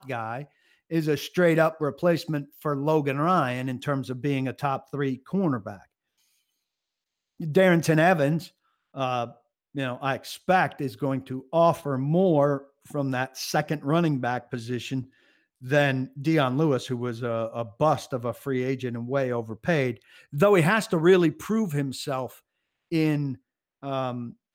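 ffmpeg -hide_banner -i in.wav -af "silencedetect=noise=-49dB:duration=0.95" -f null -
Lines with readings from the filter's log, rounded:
silence_start: 5.85
silence_end: 7.40 | silence_duration: 1.55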